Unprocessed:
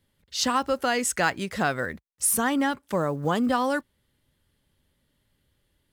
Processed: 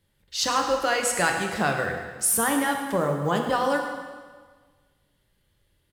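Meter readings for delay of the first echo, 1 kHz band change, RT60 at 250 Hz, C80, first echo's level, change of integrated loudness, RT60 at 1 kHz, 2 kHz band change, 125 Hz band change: 107 ms, +1.5 dB, 1.5 s, 6.0 dB, -12.5 dB, +1.0 dB, 1.5 s, +2.0 dB, +2.0 dB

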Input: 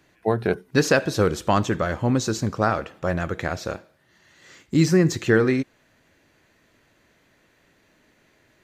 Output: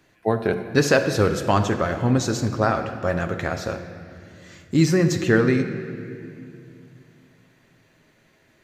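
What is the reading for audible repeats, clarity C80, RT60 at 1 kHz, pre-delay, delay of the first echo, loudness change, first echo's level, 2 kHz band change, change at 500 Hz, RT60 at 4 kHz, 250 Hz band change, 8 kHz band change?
no echo, 9.5 dB, 2.2 s, 7 ms, no echo, +0.5 dB, no echo, +1.0 dB, +1.0 dB, 1.9 s, +1.0 dB, +0.5 dB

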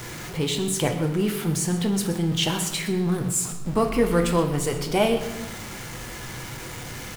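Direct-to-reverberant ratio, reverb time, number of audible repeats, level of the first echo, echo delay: 3.5 dB, 1.0 s, 1, -16.0 dB, 126 ms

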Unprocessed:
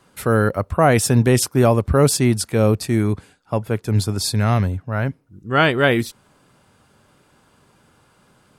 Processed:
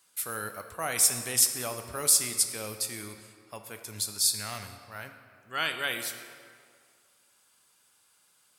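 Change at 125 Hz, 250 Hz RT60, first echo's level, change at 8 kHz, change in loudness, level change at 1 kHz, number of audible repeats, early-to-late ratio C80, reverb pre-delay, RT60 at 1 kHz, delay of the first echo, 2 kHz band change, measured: -28.0 dB, 2.0 s, no echo, +1.5 dB, -8.5 dB, -15.5 dB, no echo, 9.0 dB, 7 ms, 2.2 s, no echo, -11.0 dB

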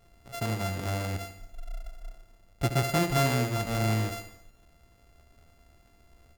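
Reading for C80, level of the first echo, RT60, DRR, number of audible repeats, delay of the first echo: no reverb, -10.0 dB, no reverb, no reverb, 5, 73 ms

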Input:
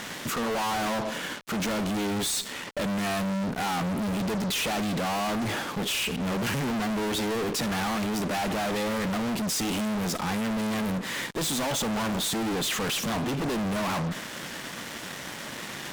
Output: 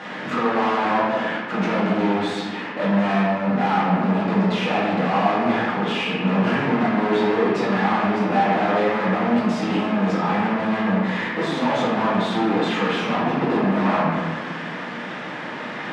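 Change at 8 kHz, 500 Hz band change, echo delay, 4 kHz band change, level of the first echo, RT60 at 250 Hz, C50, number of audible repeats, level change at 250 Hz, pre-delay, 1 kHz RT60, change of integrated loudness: under -10 dB, +9.5 dB, no echo, -0.5 dB, no echo, 2.0 s, -1.0 dB, no echo, +8.0 dB, 3 ms, 1.3 s, +7.0 dB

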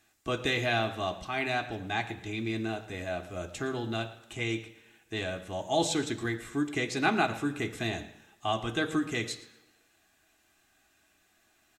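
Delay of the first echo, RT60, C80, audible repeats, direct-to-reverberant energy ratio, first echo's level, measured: 115 ms, 1.0 s, 14.0 dB, 1, 5.5 dB, -18.0 dB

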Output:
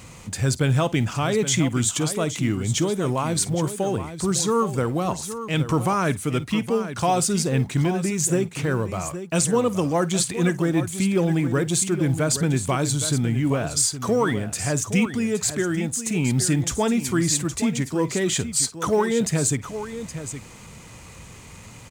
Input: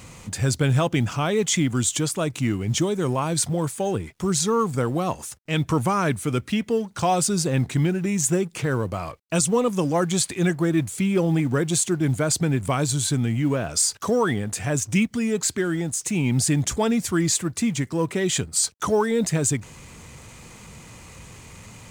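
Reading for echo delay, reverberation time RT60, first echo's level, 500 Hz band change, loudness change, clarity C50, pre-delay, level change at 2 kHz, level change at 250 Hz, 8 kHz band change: 52 ms, no reverb, -18.5 dB, +0.5 dB, 0.0 dB, no reverb, no reverb, +0.5 dB, +0.5 dB, +0.5 dB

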